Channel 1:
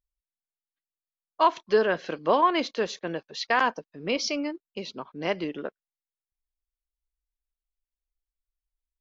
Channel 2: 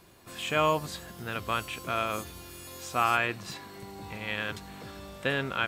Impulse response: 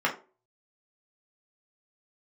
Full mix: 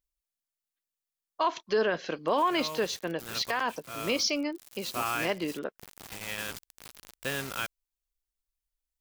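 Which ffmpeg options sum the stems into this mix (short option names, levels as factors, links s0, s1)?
-filter_complex "[0:a]volume=0.841,asplit=2[s0][s1];[1:a]acrusher=bits=5:mix=0:aa=0.000001,adelay=2000,volume=0.531[s2];[s1]apad=whole_len=338369[s3];[s2][s3]sidechaincompress=threshold=0.0251:ratio=8:attack=41:release=591[s4];[s0][s4]amix=inputs=2:normalize=0,highshelf=f=4000:g=7,alimiter=limit=0.133:level=0:latency=1:release=19"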